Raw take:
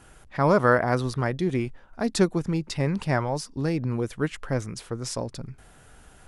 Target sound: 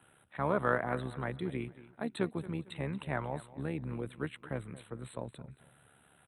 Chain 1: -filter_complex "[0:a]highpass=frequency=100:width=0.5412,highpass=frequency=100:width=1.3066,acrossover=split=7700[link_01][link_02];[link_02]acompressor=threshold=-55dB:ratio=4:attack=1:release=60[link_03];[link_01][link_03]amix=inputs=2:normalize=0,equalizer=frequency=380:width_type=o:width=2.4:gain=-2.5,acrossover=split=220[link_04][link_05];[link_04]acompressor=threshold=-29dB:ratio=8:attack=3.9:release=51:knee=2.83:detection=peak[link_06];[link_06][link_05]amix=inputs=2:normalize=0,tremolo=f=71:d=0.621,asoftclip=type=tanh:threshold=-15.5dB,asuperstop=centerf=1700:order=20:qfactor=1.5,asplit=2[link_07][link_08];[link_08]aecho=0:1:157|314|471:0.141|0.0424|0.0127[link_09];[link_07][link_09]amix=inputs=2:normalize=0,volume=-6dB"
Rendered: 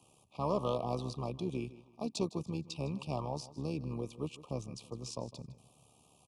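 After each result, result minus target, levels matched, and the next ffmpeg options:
2,000 Hz band −15.0 dB; soft clipping: distortion +18 dB; echo 69 ms early
-filter_complex "[0:a]highpass=frequency=100:width=0.5412,highpass=frequency=100:width=1.3066,acrossover=split=7700[link_01][link_02];[link_02]acompressor=threshold=-55dB:ratio=4:attack=1:release=60[link_03];[link_01][link_03]amix=inputs=2:normalize=0,equalizer=frequency=380:width_type=o:width=2.4:gain=-2.5,acrossover=split=220[link_04][link_05];[link_04]acompressor=threshold=-29dB:ratio=8:attack=3.9:release=51:knee=2.83:detection=peak[link_06];[link_06][link_05]amix=inputs=2:normalize=0,tremolo=f=71:d=0.621,asoftclip=type=tanh:threshold=-15.5dB,asuperstop=centerf=5700:order=20:qfactor=1.5,asplit=2[link_07][link_08];[link_08]aecho=0:1:157|314|471:0.141|0.0424|0.0127[link_09];[link_07][link_09]amix=inputs=2:normalize=0,volume=-6dB"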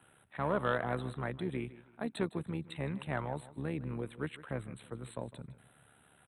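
soft clipping: distortion +18 dB; echo 69 ms early
-filter_complex "[0:a]highpass=frequency=100:width=0.5412,highpass=frequency=100:width=1.3066,acrossover=split=7700[link_01][link_02];[link_02]acompressor=threshold=-55dB:ratio=4:attack=1:release=60[link_03];[link_01][link_03]amix=inputs=2:normalize=0,equalizer=frequency=380:width_type=o:width=2.4:gain=-2.5,acrossover=split=220[link_04][link_05];[link_04]acompressor=threshold=-29dB:ratio=8:attack=3.9:release=51:knee=2.83:detection=peak[link_06];[link_06][link_05]amix=inputs=2:normalize=0,tremolo=f=71:d=0.621,asoftclip=type=tanh:threshold=-4dB,asuperstop=centerf=5700:order=20:qfactor=1.5,asplit=2[link_07][link_08];[link_08]aecho=0:1:157|314|471:0.141|0.0424|0.0127[link_09];[link_07][link_09]amix=inputs=2:normalize=0,volume=-6dB"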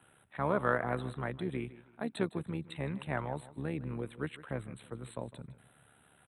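echo 69 ms early
-filter_complex "[0:a]highpass=frequency=100:width=0.5412,highpass=frequency=100:width=1.3066,acrossover=split=7700[link_01][link_02];[link_02]acompressor=threshold=-55dB:ratio=4:attack=1:release=60[link_03];[link_01][link_03]amix=inputs=2:normalize=0,equalizer=frequency=380:width_type=o:width=2.4:gain=-2.5,acrossover=split=220[link_04][link_05];[link_04]acompressor=threshold=-29dB:ratio=8:attack=3.9:release=51:knee=2.83:detection=peak[link_06];[link_06][link_05]amix=inputs=2:normalize=0,tremolo=f=71:d=0.621,asoftclip=type=tanh:threshold=-4dB,asuperstop=centerf=5700:order=20:qfactor=1.5,asplit=2[link_07][link_08];[link_08]aecho=0:1:226|452|678:0.141|0.0424|0.0127[link_09];[link_07][link_09]amix=inputs=2:normalize=0,volume=-6dB"

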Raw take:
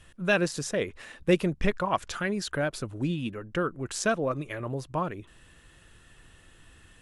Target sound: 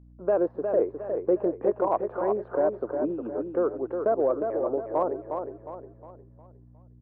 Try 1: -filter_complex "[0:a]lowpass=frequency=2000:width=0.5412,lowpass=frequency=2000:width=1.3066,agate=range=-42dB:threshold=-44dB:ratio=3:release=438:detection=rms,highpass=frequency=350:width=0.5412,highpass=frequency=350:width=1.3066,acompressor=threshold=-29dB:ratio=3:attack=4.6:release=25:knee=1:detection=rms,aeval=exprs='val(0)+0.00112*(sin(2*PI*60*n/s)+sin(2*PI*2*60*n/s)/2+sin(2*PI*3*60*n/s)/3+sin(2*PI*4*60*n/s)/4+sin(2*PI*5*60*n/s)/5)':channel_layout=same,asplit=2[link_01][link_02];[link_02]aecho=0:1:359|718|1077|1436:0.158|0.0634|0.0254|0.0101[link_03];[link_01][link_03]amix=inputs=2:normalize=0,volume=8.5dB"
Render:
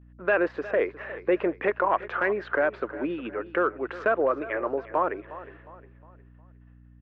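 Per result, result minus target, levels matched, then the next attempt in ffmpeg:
2,000 Hz band +18.5 dB; echo-to-direct −10 dB
-filter_complex "[0:a]lowpass=frequency=840:width=0.5412,lowpass=frequency=840:width=1.3066,agate=range=-42dB:threshold=-44dB:ratio=3:release=438:detection=rms,highpass=frequency=350:width=0.5412,highpass=frequency=350:width=1.3066,acompressor=threshold=-29dB:ratio=3:attack=4.6:release=25:knee=1:detection=rms,aeval=exprs='val(0)+0.00112*(sin(2*PI*60*n/s)+sin(2*PI*2*60*n/s)/2+sin(2*PI*3*60*n/s)/3+sin(2*PI*4*60*n/s)/4+sin(2*PI*5*60*n/s)/5)':channel_layout=same,asplit=2[link_01][link_02];[link_02]aecho=0:1:359|718|1077|1436:0.158|0.0634|0.0254|0.0101[link_03];[link_01][link_03]amix=inputs=2:normalize=0,volume=8.5dB"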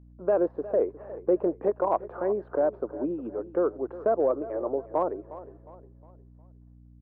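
echo-to-direct −10 dB
-filter_complex "[0:a]lowpass=frequency=840:width=0.5412,lowpass=frequency=840:width=1.3066,agate=range=-42dB:threshold=-44dB:ratio=3:release=438:detection=rms,highpass=frequency=350:width=0.5412,highpass=frequency=350:width=1.3066,acompressor=threshold=-29dB:ratio=3:attack=4.6:release=25:knee=1:detection=rms,aeval=exprs='val(0)+0.00112*(sin(2*PI*60*n/s)+sin(2*PI*2*60*n/s)/2+sin(2*PI*3*60*n/s)/3+sin(2*PI*4*60*n/s)/4+sin(2*PI*5*60*n/s)/5)':channel_layout=same,asplit=2[link_01][link_02];[link_02]aecho=0:1:359|718|1077|1436|1795:0.501|0.2|0.0802|0.0321|0.0128[link_03];[link_01][link_03]amix=inputs=2:normalize=0,volume=8.5dB"

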